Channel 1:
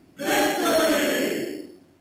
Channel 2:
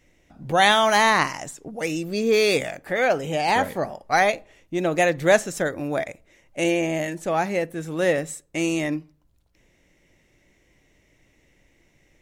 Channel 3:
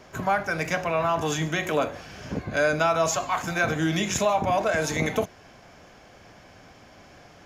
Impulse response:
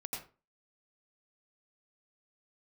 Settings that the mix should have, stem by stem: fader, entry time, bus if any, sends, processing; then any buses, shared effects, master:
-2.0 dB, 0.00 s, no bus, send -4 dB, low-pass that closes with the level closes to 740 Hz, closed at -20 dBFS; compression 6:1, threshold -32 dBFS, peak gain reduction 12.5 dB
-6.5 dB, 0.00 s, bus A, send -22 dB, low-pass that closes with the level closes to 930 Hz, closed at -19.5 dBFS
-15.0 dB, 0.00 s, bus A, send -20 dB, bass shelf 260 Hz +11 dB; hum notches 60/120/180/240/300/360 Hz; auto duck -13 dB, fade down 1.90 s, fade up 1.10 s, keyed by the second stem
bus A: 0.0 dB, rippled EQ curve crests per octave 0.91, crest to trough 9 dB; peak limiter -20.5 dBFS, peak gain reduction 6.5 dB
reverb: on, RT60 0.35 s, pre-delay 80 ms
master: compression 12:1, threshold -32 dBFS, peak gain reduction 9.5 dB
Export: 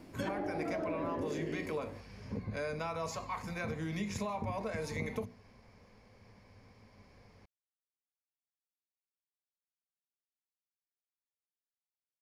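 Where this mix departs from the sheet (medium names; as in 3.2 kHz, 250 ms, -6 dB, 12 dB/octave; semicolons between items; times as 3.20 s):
stem 2: muted; reverb return -6.0 dB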